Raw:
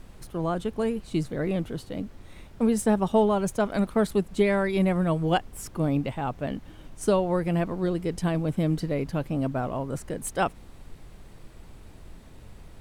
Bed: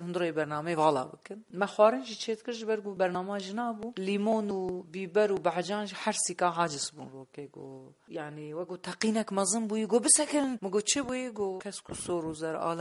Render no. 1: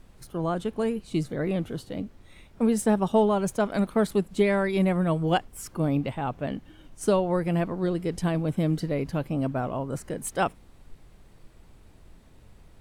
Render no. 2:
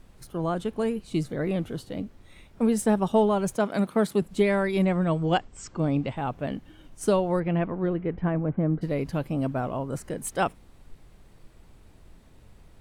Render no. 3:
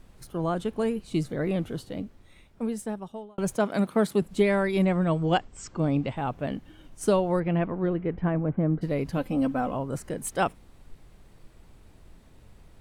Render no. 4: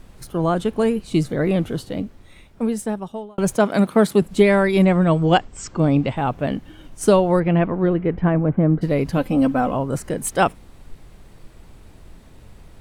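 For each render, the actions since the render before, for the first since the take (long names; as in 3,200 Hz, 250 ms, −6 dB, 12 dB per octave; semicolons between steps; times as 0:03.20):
noise reduction from a noise print 6 dB
0:03.55–0:04.22: high-pass filter 98 Hz 24 dB per octave; 0:04.82–0:06.17: linear-phase brick-wall low-pass 8,300 Hz; 0:07.39–0:08.81: low-pass filter 3,500 Hz → 1,500 Hz 24 dB per octave
0:01.77–0:03.38: fade out; 0:09.17–0:09.75: comb filter 3.9 ms
level +8 dB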